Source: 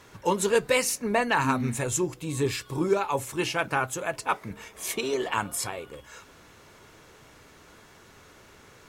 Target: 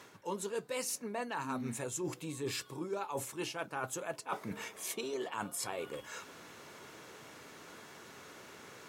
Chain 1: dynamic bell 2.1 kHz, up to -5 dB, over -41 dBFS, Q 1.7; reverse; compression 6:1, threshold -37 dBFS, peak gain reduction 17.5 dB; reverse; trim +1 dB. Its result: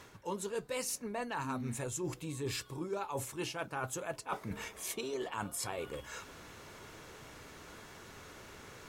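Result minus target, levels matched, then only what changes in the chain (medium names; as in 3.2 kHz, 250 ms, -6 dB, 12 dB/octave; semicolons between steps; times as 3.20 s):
125 Hz band +4.0 dB
add after dynamic bell: high-pass 160 Hz 12 dB/octave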